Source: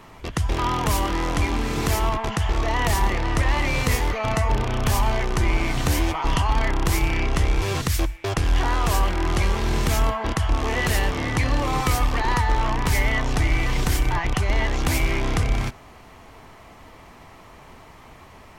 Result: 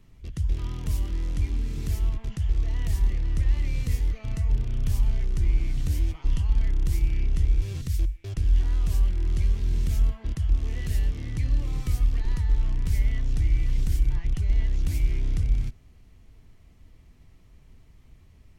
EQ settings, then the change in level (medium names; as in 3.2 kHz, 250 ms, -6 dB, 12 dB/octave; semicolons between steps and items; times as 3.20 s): amplifier tone stack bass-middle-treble 10-0-1; +6.0 dB